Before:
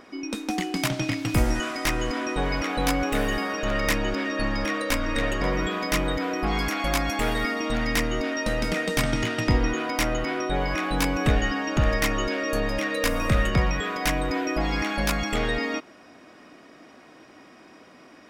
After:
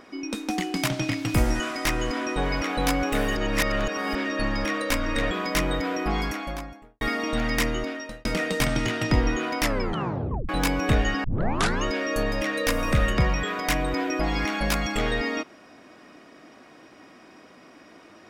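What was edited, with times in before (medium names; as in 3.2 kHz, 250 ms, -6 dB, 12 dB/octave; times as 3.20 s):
3.36–4.15 s: reverse
5.31–5.68 s: delete
6.38–7.38 s: studio fade out
8.06–8.62 s: fade out
9.98 s: tape stop 0.88 s
11.61 s: tape start 0.60 s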